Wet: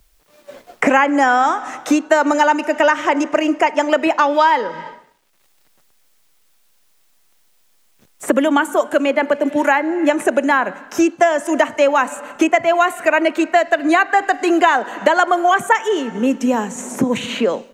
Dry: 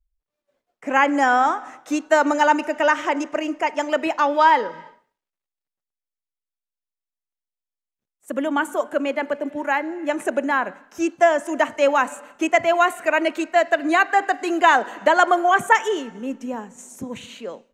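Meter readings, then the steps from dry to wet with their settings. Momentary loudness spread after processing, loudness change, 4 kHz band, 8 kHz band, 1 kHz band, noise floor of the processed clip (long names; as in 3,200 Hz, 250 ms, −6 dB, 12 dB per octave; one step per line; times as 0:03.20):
6 LU, +3.5 dB, +4.5 dB, +6.0 dB, +3.0 dB, −57 dBFS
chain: multiband upward and downward compressor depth 100%
level +3.5 dB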